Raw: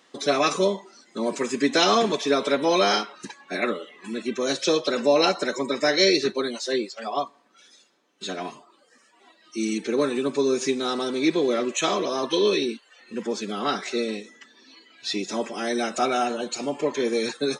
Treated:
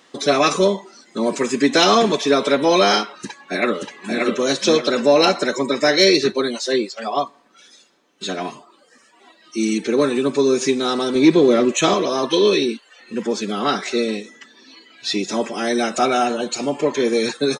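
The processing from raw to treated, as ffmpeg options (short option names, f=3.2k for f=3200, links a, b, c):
-filter_complex "[0:a]asplit=2[a][b];[b]afade=t=in:st=3.15:d=0.01,afade=t=out:st=4.2:d=0.01,aecho=0:1:580|1160|1740|2320:0.749894|0.224968|0.0674905|0.0202471[c];[a][c]amix=inputs=2:normalize=0,asettb=1/sr,asplit=3[d][e][f];[d]atrim=end=11.154[g];[e]atrim=start=11.15:end=11.94,asetpts=PTS-STARTPTS,afade=t=in:d=0.004:c=qsin,afade=t=out:st=0.786:d=0.004:c=qsin,lowshelf=f=410:g=7[h];[f]atrim=start=11.936[i];[g][h]acrossfade=d=0.004:c1=hsin:c2=qsin[j];[j][i]acrossfade=d=0.004:c1=qsin:c2=hsin,lowshelf=f=82:g=10,acontrast=41"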